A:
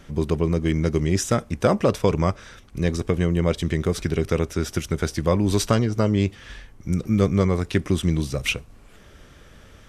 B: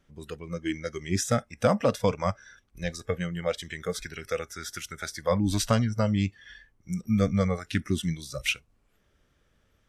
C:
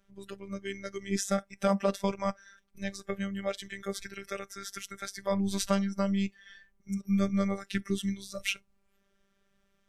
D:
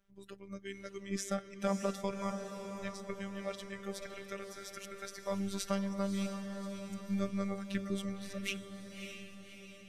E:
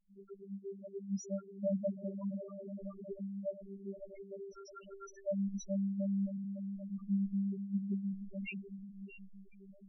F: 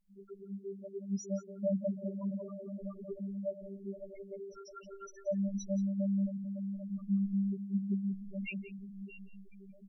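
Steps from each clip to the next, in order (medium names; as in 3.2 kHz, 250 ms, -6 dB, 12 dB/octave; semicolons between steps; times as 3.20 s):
spectral noise reduction 17 dB; trim -3 dB
robot voice 197 Hz; trim -1.5 dB
echo that smears into a reverb 594 ms, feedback 54%, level -7 dB; trim -7 dB
loudest bins only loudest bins 2; trim +3 dB
delay 177 ms -15 dB; trim +2 dB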